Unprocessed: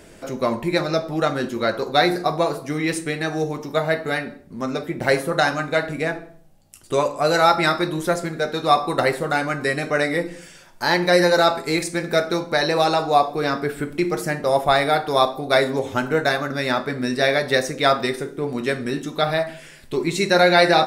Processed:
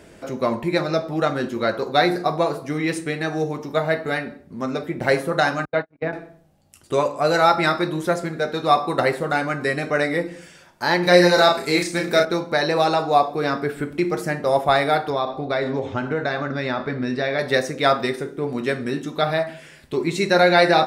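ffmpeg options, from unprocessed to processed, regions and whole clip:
-filter_complex "[0:a]asettb=1/sr,asplit=3[a][b][c];[a]atrim=end=5.654[d];[b]atrim=start=5.65:end=6.13,asetpts=PTS-STARTPTS,afade=t=in:d=0.004:c=qsin,afade=t=out:st=0.476:d=0.004:c=qsin,lowpass=f=4.8k:w=0.5412,lowpass=f=4.8k:w=1.3066,highshelf=f=2.7k:g=-11.5,agate=range=-49dB:threshold=-25dB:ratio=16:release=100:detection=peak[e];[c]atrim=start=6.126[f];[d][e]acrossfade=d=0.004:c1=hsin:c2=qsin[g];[g][f]acrossfade=d=0.004:c1=qsin:c2=hsin,asettb=1/sr,asplit=3[h][i][j];[h]atrim=end=11.034[k];[i]atrim=start=11.03:end=12.25,asetpts=PTS-STARTPTS,afade=t=in:d=0.004:c=qsin,afade=t=out:st=1.216:d=0.004:c=qsin,acrossover=split=5200[l][m];[m]acompressor=threshold=-38dB:ratio=4:attack=1:release=60[n];[l][n]amix=inputs=2:normalize=0,highshelf=f=3.4k:g=9.5,asplit=2[o][p];[p]adelay=34,volume=-4.5dB[q];[o][q]amix=inputs=2:normalize=0,atrim=end_sample=53802[r];[j]atrim=start=12.246[s];[k][r]acrossfade=d=0.004:c1=hsin:c2=qsin[t];[t][s]acrossfade=d=0.004:c1=qsin:c2=hsin,asettb=1/sr,asplit=3[u][v][w];[u]atrim=end=15.104[x];[v]atrim=start=15.1:end=17.39,asetpts=PTS-STARTPTS,afade=t=in:d=0.004:c=qsin,afade=t=out:st=2.286:d=0.004:c=qsin,lowpass=4.6k,lowshelf=f=61:g=12,acompressor=threshold=-19dB:ratio=3:attack=3.2:release=140:knee=1:detection=peak[y];[w]atrim=start=17.386[z];[x][y]acrossfade=d=0.004:c1=hsin:c2=qsin[aa];[aa][z]acrossfade=d=0.004:c1=qsin:c2=hsin,highpass=42,highshelf=f=4.7k:g=-6"

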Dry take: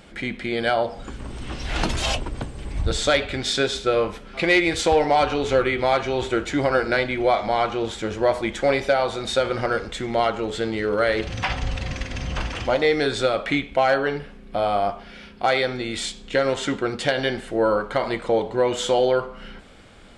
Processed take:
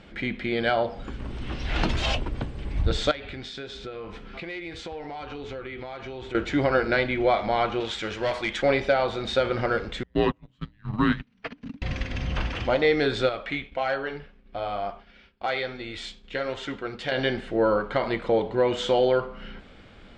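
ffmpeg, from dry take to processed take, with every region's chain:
-filter_complex "[0:a]asettb=1/sr,asplit=3[a][b][c];[a]atrim=end=3.114[d];[b]atrim=start=3.11:end=6.35,asetpts=PTS-STARTPTS,afade=t=in:d=0.004:c=qsin,afade=t=out:st=3.236:d=0.004:c=qsin,bandreject=f=580:w=12,acompressor=threshold=-33dB:ratio=5:attack=3.2:release=140:knee=1:detection=peak[e];[c]atrim=start=6.346[f];[d][e]acrossfade=d=0.004:c1=hsin:c2=qsin[g];[g][f]acrossfade=d=0.004:c1=qsin:c2=hsin,asettb=1/sr,asplit=3[h][i][j];[h]atrim=end=7.804[k];[i]atrim=start=7.8:end=8.62,asetpts=PTS-STARTPTS,afade=t=in:d=0.004:c=qsin,afade=t=out:st=0.816:d=0.004:c=qsin,tiltshelf=f=890:g=-7,asoftclip=type=hard:threshold=-19dB[l];[j]atrim=start=8.616[m];[k][l]acrossfade=d=0.004:c1=hsin:c2=qsin[n];[n][m]acrossfade=d=0.004:c1=qsin:c2=hsin,asettb=1/sr,asplit=3[o][p][q];[o]atrim=end=10.034[r];[p]atrim=start=10.03:end=11.82,asetpts=PTS-STARTPTS,afade=t=in:d=0.004:c=qsin,afade=t=out:st=1.786:d=0.004:c=qsin,agate=range=-34dB:threshold=-22dB:ratio=16:release=100:detection=peak,afreqshift=-300[s];[q]atrim=start=11.816[t];[r][s]acrossfade=d=0.004:c1=hsin:c2=qsin[u];[u][t]acrossfade=d=0.004:c1=qsin:c2=hsin,asettb=1/sr,asplit=3[v][w][x];[v]atrim=end=13.294[y];[w]atrim=start=13.29:end=17.12,asetpts=PTS-STARTPTS,afade=t=in:d=0.004:c=qsin,afade=t=out:st=3.826:d=0.004:c=qsin,equalizer=f=220:w=0.59:g=-5,flanger=delay=2:depth=3.6:regen=-68:speed=1.5:shape=triangular,agate=range=-33dB:threshold=-43dB:ratio=3:release=100:detection=peak[z];[x]atrim=start=17.116[aa];[y][z]acrossfade=d=0.004:c1=hsin:c2=qsin[ab];[ab][aa]acrossfade=d=0.004:c1=qsin:c2=hsin,lowpass=3.8k,equalizer=f=860:t=o:w=2.1:g=-3"

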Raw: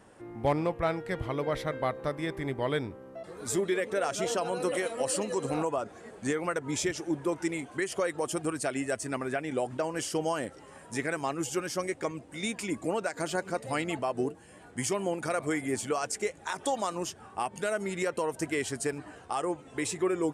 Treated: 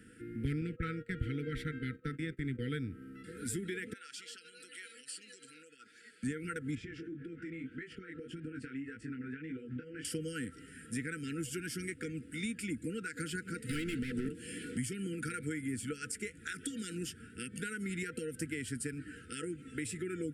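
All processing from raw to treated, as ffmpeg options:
-filter_complex "[0:a]asettb=1/sr,asplit=3[a][b][c];[a]atrim=end=0.614[d];[b]atrim=start=0.61:end=2.6,asetpts=PTS-STARTPTS,afade=t=in:d=0.004:c=qsin,afade=t=out:st=1.986:d=0.004:c=qsin,agate=range=-23dB:threshold=-40dB:ratio=16:release=100:detection=peak,equalizer=f=11k:w=3:g=-10.5,bandreject=f=5.1k:w=14[e];[c]atrim=start=2.596[f];[d][e]acrossfade=d=0.004:c1=hsin:c2=qsin[g];[g][f]acrossfade=d=0.004:c1=qsin:c2=hsin,asettb=1/sr,asplit=3[h][i][j];[h]atrim=end=3.934[k];[i]atrim=start=3.93:end=6.23,asetpts=PTS-STARTPTS,afade=t=in:d=0.004:c=qsin,afade=t=out:st=2.296:d=0.004:c=qsin,equalizer=f=4.5k:t=o:w=0.28:g=7,acompressor=threshold=-37dB:ratio=5:attack=3.2:release=140:knee=1:detection=peak,bandpass=f=4.1k:t=q:w=0.66[l];[j]atrim=start=6.226[m];[k][l]acrossfade=d=0.004:c1=hsin:c2=qsin[n];[n][m]acrossfade=d=0.004:c1=qsin:c2=hsin,asettb=1/sr,asplit=3[o][p][q];[o]atrim=end=6.754[r];[p]atrim=start=6.75:end=10.05,asetpts=PTS-STARTPTS,afade=t=in:d=0.004:c=qsin,afade=t=out:st=3.296:d=0.004:c=qsin,lowpass=2.5k,flanger=delay=18:depth=6.2:speed=1.8,acompressor=threshold=-38dB:ratio=16:attack=3.2:release=140:knee=1:detection=peak[s];[q]atrim=start=10.046[t];[r][s]acrossfade=d=0.004:c1=hsin:c2=qsin[u];[u][t]acrossfade=d=0.004:c1=qsin:c2=hsin,asettb=1/sr,asplit=3[v][w][x];[v]atrim=end=13.694[y];[w]atrim=start=13.69:end=14.78,asetpts=PTS-STARTPTS,afade=t=in:d=0.004:c=qsin,afade=t=out:st=1.086:d=0.004:c=qsin,equalizer=f=1.5k:t=o:w=1.1:g=-13.5,asplit=2[z][aa];[aa]highpass=f=720:p=1,volume=26dB,asoftclip=type=tanh:threshold=-20dB[ab];[z][ab]amix=inputs=2:normalize=0,lowpass=f=3.3k:p=1,volume=-6dB[ac];[x]atrim=start=14.776[ad];[y][ac]acrossfade=d=0.004:c1=hsin:c2=qsin[ae];[ae][ad]acrossfade=d=0.004:c1=qsin:c2=hsin,afftfilt=real='re*(1-between(b*sr/4096,500,1300))':imag='im*(1-between(b*sr/4096,500,1300))':win_size=4096:overlap=0.75,equalizer=f=250:t=o:w=0.33:g=6,equalizer=f=400:t=o:w=0.33:g=-11,equalizer=f=630:t=o:w=0.33:g=-3,equalizer=f=4k:t=o:w=0.33:g=-6,equalizer=f=6.3k:t=o:w=0.33:g=-11,equalizer=f=10k:t=o:w=0.33:g=3,acrossover=split=140[af][ag];[ag]acompressor=threshold=-39dB:ratio=4[ah];[af][ah]amix=inputs=2:normalize=0,volume=1.5dB"

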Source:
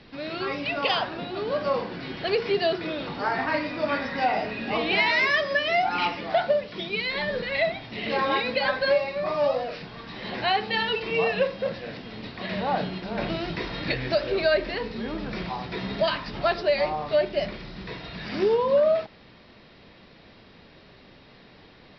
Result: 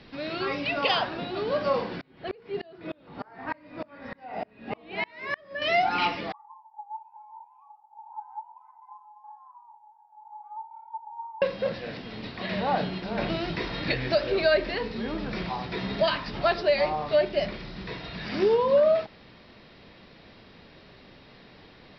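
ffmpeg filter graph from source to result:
-filter_complex "[0:a]asettb=1/sr,asplit=3[a][b][c];[a]atrim=end=2.014[d];[b]atrim=start=2.01:end=5.62,asetpts=PTS-STARTPTS,afade=t=in:d=0.004:c=qsin,afade=t=out:st=3.606:d=0.004:c=qsin,lowpass=f=1.5k:p=1,aeval=exprs='val(0)*pow(10,-33*if(lt(mod(-3.3*n/s,1),2*abs(-3.3)/1000),1-mod(-3.3*n/s,1)/(2*abs(-3.3)/1000),(mod(-3.3*n/s,1)-2*abs(-3.3)/1000)/(1-2*abs(-3.3)/1000))/20)':c=same[e];[c]atrim=start=5.616[f];[d][e]acrossfade=d=0.004:c1=hsin:c2=qsin[g];[g][f]acrossfade=d=0.004:c1=qsin:c2=hsin,asettb=1/sr,asplit=3[h][i][j];[h]atrim=end=6.324[k];[i]atrim=start=6.32:end=11.42,asetpts=PTS-STARTPTS,afade=t=in:d=0.004:c=qsin,afade=t=out:st=5.096:d=0.004:c=qsin,asuperpass=centerf=390:order=4:qfactor=7.1,afreqshift=470[l];[j]atrim=start=11.416[m];[k][l]acrossfade=d=0.004:c1=hsin:c2=qsin[n];[n][m]acrossfade=d=0.004:c1=qsin:c2=hsin"

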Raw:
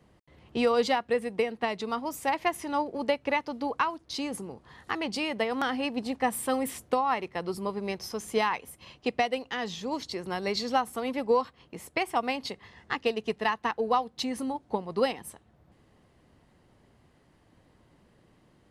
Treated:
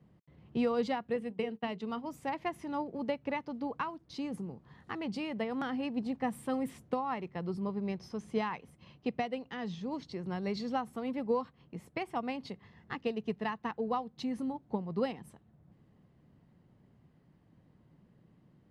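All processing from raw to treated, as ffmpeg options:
-filter_complex "[0:a]asettb=1/sr,asplit=3[a][b][c];[a]atrim=end=1.164[d];[b]atrim=start=1.16:end=2.07,asetpts=PTS-STARTPTS,afade=t=in:d=0.004:c=qsin,afade=t=out:st=0.906:d=0.004:c=qsin,bandreject=f=50:t=h:w=6,bandreject=f=100:t=h:w=6,bandreject=f=150:t=h:w=6,bandreject=f=200:t=h:w=6,bandreject=f=250:t=h:w=6,bandreject=f=300:t=h:w=6,bandreject=f=350:t=h:w=6,bandreject=f=400:t=h:w=6,bandreject=f=450:t=h:w=6,agate=range=-33dB:threshold=-37dB:ratio=3:release=100:detection=peak,equalizer=f=3k:w=7.6:g=8[e];[c]atrim=start=2.066[f];[d][e]acrossfade=d=0.004:c1=hsin:c2=qsin[g];[g][f]acrossfade=d=0.004:c1=qsin:c2=hsin,asettb=1/sr,asplit=3[h][i][j];[h]atrim=end=7.314[k];[i]atrim=start=7.31:end=10.44,asetpts=PTS-STARTPTS,afade=t=in:d=0.004:c=qsin,afade=t=out:st=3.126:d=0.004:c=qsin,lowpass=9.2k,bandreject=f=7.1k:w=18[l];[j]atrim=start=10.436[m];[k][l]acrossfade=d=0.004:c1=hsin:c2=qsin[n];[n][m]acrossfade=d=0.004:c1=qsin:c2=hsin,lowpass=f=3.3k:p=1,equalizer=f=160:t=o:w=1.5:g=12.5,volume=-9dB"

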